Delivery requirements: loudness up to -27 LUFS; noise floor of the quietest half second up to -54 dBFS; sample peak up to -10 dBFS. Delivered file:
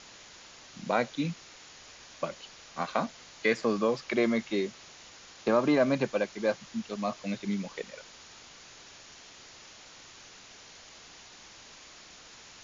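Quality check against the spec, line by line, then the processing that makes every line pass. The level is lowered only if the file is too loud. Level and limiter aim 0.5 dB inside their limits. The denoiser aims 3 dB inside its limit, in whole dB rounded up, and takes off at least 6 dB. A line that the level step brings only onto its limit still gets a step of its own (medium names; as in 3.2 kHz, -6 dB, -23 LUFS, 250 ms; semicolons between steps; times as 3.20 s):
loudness -30.5 LUFS: pass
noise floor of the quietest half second -51 dBFS: fail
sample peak -12.5 dBFS: pass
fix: noise reduction 6 dB, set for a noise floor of -51 dBFS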